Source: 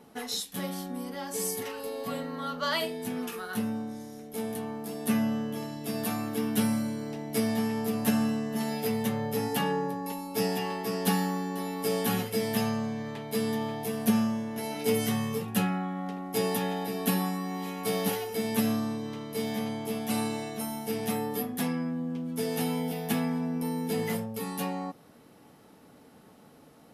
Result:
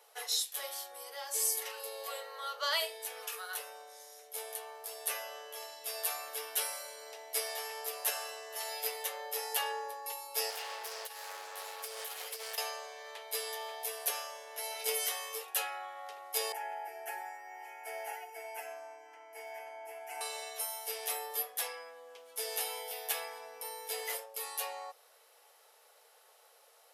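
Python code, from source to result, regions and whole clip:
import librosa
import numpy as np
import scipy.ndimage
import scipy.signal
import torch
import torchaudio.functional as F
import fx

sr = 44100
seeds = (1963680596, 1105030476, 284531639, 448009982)

y = fx.chain(x, sr, fx.over_compress(threshold_db=-30.0, ratio=-0.5),
    fx.clip_hard(threshold_db=-33.5),
    fx.doppler_dist(depth_ms=0.11), at=(10.5, 12.58))
y = fx.chain(y, sr, fx.lowpass(hz=1200.0, slope=6),
    fx.fixed_phaser(hz=770.0, stages=8),
    fx.comb(ms=5.9, depth=0.97), at=(16.52, 20.21))
y = scipy.signal.sosfilt(scipy.signal.butter(8, 470.0, 'highpass', fs=sr, output='sos'), y)
y = fx.high_shelf(y, sr, hz=2400.0, db=9.5)
y = y * 10.0 ** (-6.5 / 20.0)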